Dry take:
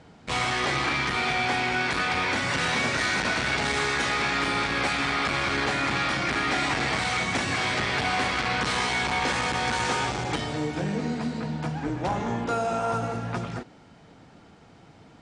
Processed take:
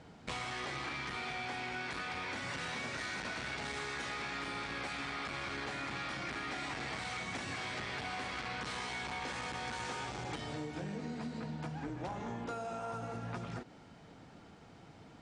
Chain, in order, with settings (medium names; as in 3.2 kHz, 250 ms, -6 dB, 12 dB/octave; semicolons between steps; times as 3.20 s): compression, threshold -34 dBFS, peak gain reduction 11.5 dB; trim -4 dB